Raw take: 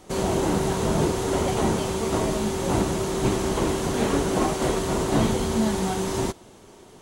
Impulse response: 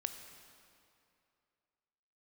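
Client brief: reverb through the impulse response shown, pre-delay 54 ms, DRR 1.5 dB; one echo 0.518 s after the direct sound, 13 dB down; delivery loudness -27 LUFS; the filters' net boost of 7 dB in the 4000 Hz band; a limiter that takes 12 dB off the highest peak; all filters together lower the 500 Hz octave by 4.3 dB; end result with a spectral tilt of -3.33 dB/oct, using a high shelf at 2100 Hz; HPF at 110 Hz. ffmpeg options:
-filter_complex "[0:a]highpass=110,equalizer=f=500:t=o:g=-6.5,highshelf=f=2.1k:g=4,equalizer=f=4k:t=o:g=5,alimiter=limit=-22.5dB:level=0:latency=1,aecho=1:1:518:0.224,asplit=2[a][b];[1:a]atrim=start_sample=2205,adelay=54[c];[b][c]afir=irnorm=-1:irlink=0,volume=-1dB[d];[a][d]amix=inputs=2:normalize=0,volume=1.5dB"

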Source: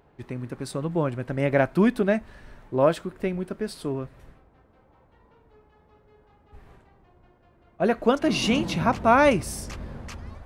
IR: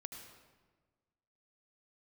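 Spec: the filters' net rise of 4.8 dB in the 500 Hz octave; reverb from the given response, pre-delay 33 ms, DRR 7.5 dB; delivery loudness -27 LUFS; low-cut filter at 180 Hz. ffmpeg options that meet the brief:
-filter_complex "[0:a]highpass=180,equalizer=f=500:t=o:g=6,asplit=2[a][b];[1:a]atrim=start_sample=2205,adelay=33[c];[b][c]afir=irnorm=-1:irlink=0,volume=-4dB[d];[a][d]amix=inputs=2:normalize=0,volume=-6dB"

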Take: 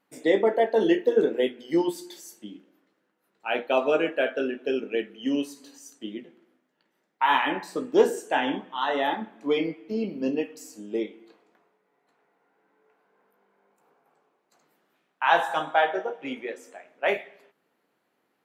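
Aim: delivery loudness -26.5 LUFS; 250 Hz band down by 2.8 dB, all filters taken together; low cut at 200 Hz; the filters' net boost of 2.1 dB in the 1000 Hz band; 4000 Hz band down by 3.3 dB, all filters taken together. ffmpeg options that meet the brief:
-af "highpass=200,equalizer=f=250:t=o:g=-3,equalizer=f=1k:t=o:g=3,equalizer=f=4k:t=o:g=-5,volume=-0.5dB"

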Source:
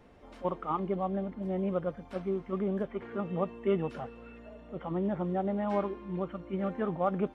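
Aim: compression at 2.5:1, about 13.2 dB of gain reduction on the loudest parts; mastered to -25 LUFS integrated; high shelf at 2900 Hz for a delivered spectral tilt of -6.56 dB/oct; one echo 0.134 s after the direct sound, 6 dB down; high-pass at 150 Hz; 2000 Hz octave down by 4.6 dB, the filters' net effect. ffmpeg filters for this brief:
-af "highpass=150,equalizer=f=2k:t=o:g=-9,highshelf=f=2.9k:g=7,acompressor=threshold=-45dB:ratio=2.5,aecho=1:1:134:0.501,volume=19dB"

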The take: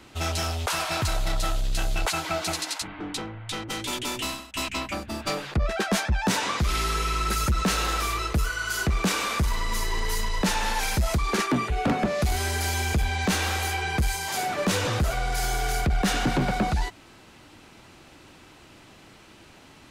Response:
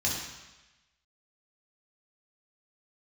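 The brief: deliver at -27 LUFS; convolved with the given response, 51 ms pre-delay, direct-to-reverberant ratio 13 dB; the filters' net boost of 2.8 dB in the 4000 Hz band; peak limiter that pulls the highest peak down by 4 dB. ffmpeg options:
-filter_complex "[0:a]equalizer=f=4k:t=o:g=3.5,alimiter=limit=-19.5dB:level=0:latency=1,asplit=2[a][b];[1:a]atrim=start_sample=2205,adelay=51[c];[b][c]afir=irnorm=-1:irlink=0,volume=-21dB[d];[a][d]amix=inputs=2:normalize=0"

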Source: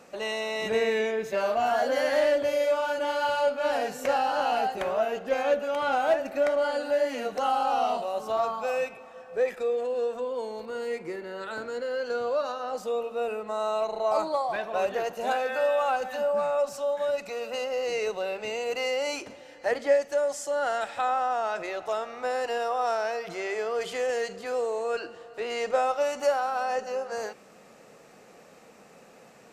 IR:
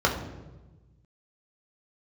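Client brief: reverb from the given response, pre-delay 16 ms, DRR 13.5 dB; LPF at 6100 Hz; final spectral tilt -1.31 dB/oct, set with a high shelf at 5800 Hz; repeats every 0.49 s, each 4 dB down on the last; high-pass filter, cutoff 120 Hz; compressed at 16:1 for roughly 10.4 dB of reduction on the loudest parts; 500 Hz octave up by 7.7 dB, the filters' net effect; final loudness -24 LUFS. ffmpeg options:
-filter_complex "[0:a]highpass=120,lowpass=6.1k,equalizer=f=500:t=o:g=9,highshelf=f=5.8k:g=-6,acompressor=threshold=-21dB:ratio=16,aecho=1:1:490|980|1470|1960|2450|2940|3430|3920|4410:0.631|0.398|0.25|0.158|0.0994|0.0626|0.0394|0.0249|0.0157,asplit=2[a][b];[1:a]atrim=start_sample=2205,adelay=16[c];[b][c]afir=irnorm=-1:irlink=0,volume=-29dB[d];[a][d]amix=inputs=2:normalize=0"

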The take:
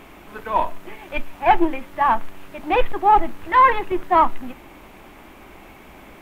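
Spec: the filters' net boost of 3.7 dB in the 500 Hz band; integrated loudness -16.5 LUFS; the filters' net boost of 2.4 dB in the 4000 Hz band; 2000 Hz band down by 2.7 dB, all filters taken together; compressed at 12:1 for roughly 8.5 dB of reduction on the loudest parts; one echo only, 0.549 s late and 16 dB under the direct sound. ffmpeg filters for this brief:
-af "equalizer=f=500:t=o:g=5,equalizer=f=2k:t=o:g=-5,equalizer=f=4k:t=o:g=6,acompressor=threshold=-17dB:ratio=12,aecho=1:1:549:0.158,volume=8.5dB"

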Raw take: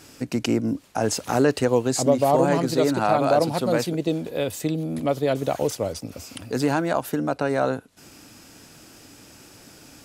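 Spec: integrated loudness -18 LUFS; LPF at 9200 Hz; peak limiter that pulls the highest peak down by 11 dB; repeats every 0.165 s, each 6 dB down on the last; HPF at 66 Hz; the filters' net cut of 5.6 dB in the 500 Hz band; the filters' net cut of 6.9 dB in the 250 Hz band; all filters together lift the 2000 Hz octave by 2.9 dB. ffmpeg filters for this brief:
-af "highpass=66,lowpass=9.2k,equalizer=f=250:t=o:g=-7,equalizer=f=500:t=o:g=-5.5,equalizer=f=2k:t=o:g=4.5,alimiter=limit=-18.5dB:level=0:latency=1,aecho=1:1:165|330|495|660|825|990:0.501|0.251|0.125|0.0626|0.0313|0.0157,volume=11.5dB"

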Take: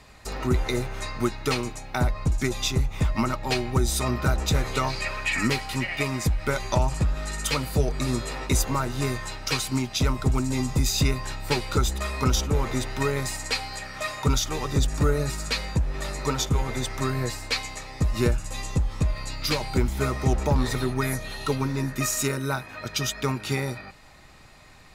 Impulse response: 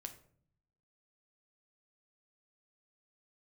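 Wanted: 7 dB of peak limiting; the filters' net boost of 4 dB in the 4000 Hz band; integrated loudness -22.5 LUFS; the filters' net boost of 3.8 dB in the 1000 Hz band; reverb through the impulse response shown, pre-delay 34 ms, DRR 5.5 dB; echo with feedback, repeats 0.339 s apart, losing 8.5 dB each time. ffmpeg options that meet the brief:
-filter_complex "[0:a]equalizer=f=1k:t=o:g=4.5,equalizer=f=4k:t=o:g=4.5,alimiter=limit=-15dB:level=0:latency=1,aecho=1:1:339|678|1017|1356:0.376|0.143|0.0543|0.0206,asplit=2[a][b];[1:a]atrim=start_sample=2205,adelay=34[c];[b][c]afir=irnorm=-1:irlink=0,volume=-1.5dB[d];[a][d]amix=inputs=2:normalize=0,volume=2.5dB"

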